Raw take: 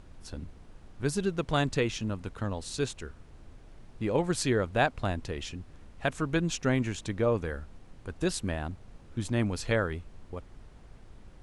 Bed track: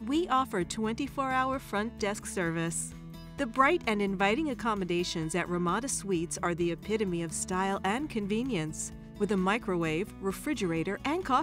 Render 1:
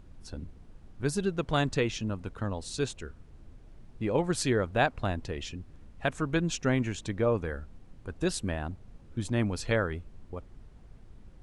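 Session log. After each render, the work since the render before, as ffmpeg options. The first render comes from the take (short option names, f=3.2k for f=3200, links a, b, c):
-af "afftdn=nr=6:nf=-52"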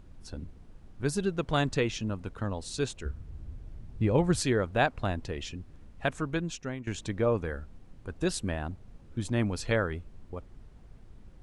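-filter_complex "[0:a]asettb=1/sr,asplit=3[a][b][c];[a]atrim=end=3.054[d];[b]atrim=start=3.05:end=4.4,asetpts=PTS-STARTPTS,afade=t=in:d=0.004:c=qsin,afade=t=out:st=1.346:d=0.004:c=qsin,equalizer=f=64:t=o:w=2.5:g=12.5[e];[c]atrim=start=4.396[f];[d][e]acrossfade=d=0.004:c1=hsin:c2=qsin[g];[g][f]acrossfade=d=0.004:c1=qsin:c2=hsin,asplit=2[h][i];[h]atrim=end=6.87,asetpts=PTS-STARTPTS,afade=t=out:st=6.07:d=0.8:silence=0.158489[j];[i]atrim=start=6.87,asetpts=PTS-STARTPTS,afade=t=in:d=0.004:c=hsin:silence=0.158489[k];[j][k]concat=n=2:v=0:a=1"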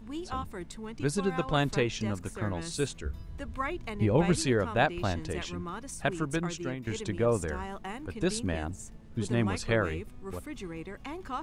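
-filter_complex "[1:a]volume=-9.5dB[a];[0:a][a]amix=inputs=2:normalize=0"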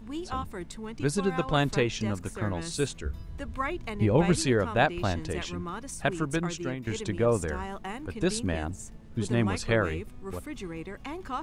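-af "volume=2dB"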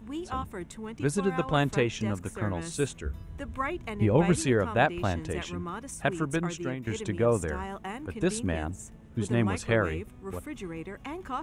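-af "highpass=42,equalizer=f=4.6k:w=2.7:g=-9.5"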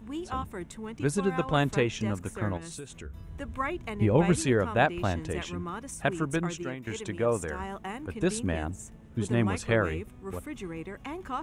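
-filter_complex "[0:a]asettb=1/sr,asplit=3[a][b][c];[a]atrim=end=2.574[d];[b]atrim=start=2.57:end=3.31,asetpts=PTS-STARTPTS,afade=t=in:d=0.004:c=qsin,afade=t=out:st=0.736:d=0.004:c=qsin,acompressor=threshold=-37dB:ratio=8:attack=3.2:release=140:knee=1:detection=peak[e];[c]atrim=start=3.306[f];[d][e]acrossfade=d=0.004:c1=hsin:c2=qsin[g];[g][f]acrossfade=d=0.004:c1=qsin:c2=hsin,asettb=1/sr,asplit=3[h][i][j];[h]atrim=end=6.634[k];[i]atrim=start=6.63:end=7.6,asetpts=PTS-STARTPTS,afade=t=in:d=0.004:c=qsin,afade=t=out:st=0.966:d=0.004:c=qsin,lowshelf=f=360:g=-5.5[l];[j]atrim=start=7.596[m];[k][l]acrossfade=d=0.004:c1=hsin:c2=qsin[n];[n][m]acrossfade=d=0.004:c1=qsin:c2=hsin"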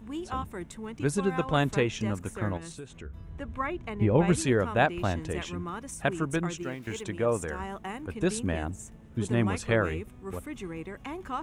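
-filter_complex "[0:a]asettb=1/sr,asplit=3[a][b][c];[a]atrim=end=2.724[d];[b]atrim=start=2.72:end=4.28,asetpts=PTS-STARTPTS,afade=t=in:d=0.004:c=qsin,afade=t=out:st=1.556:d=0.004:c=qsin,lowpass=f=3.2k:p=1[e];[c]atrim=start=4.276[f];[d][e]acrossfade=d=0.004:c1=hsin:c2=qsin[g];[g][f]acrossfade=d=0.004:c1=qsin:c2=hsin,asettb=1/sr,asplit=3[h][i][j];[h]atrim=end=6.614[k];[i]atrim=start=6.61:end=7.03,asetpts=PTS-STARTPTS,afade=t=in:d=0.004:c=qsin,afade=t=out:st=0.416:d=0.004:c=qsin,aeval=exprs='val(0)*gte(abs(val(0)),0.00266)':c=same[l];[j]atrim=start=7.026[m];[k][l]acrossfade=d=0.004:c1=hsin:c2=qsin[n];[n][m]acrossfade=d=0.004:c1=qsin:c2=hsin"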